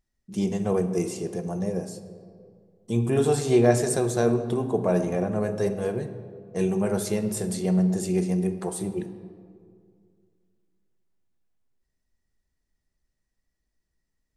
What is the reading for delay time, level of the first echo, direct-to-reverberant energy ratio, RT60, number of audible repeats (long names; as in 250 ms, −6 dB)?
no echo audible, no echo audible, 9.0 dB, 2.2 s, no echo audible